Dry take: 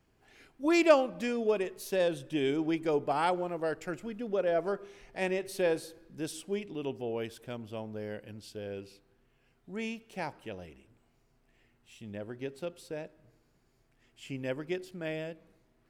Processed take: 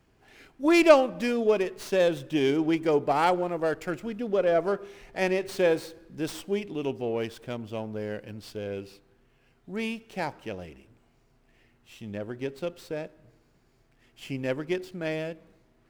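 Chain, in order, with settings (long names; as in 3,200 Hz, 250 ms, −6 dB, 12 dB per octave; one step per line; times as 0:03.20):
windowed peak hold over 3 samples
level +5.5 dB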